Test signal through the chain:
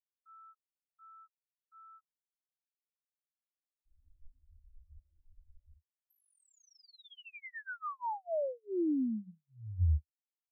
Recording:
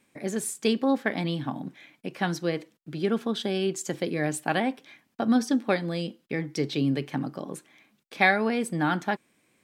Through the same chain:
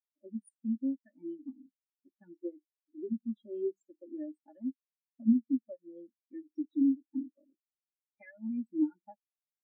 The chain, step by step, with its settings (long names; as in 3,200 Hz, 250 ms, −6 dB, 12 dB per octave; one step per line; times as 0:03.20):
parametric band 76 Hz +10.5 dB 0.4 octaves
comb filter 3.4 ms, depth 77%
hum removal 48.89 Hz, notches 4
downward compressor 16 to 1, threshold −25 dBFS
every bin expanded away from the loudest bin 4 to 1
level −4.5 dB